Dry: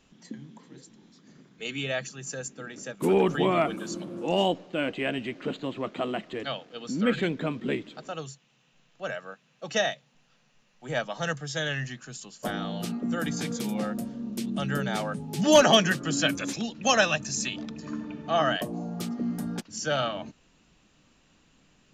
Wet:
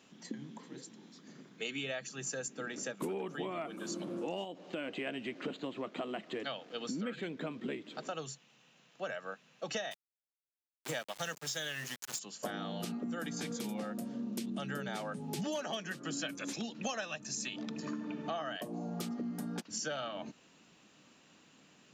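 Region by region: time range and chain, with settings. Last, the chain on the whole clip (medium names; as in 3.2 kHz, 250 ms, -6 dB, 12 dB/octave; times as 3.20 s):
4.44–5.07 s: compression 2:1, threshold -31 dBFS + tape noise reduction on one side only encoder only
9.91–12.19 s: treble shelf 3.2 kHz +11 dB + small samples zeroed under -34.5 dBFS
whole clip: high-pass 180 Hz 12 dB/octave; compression 10:1, threshold -37 dBFS; trim +1.5 dB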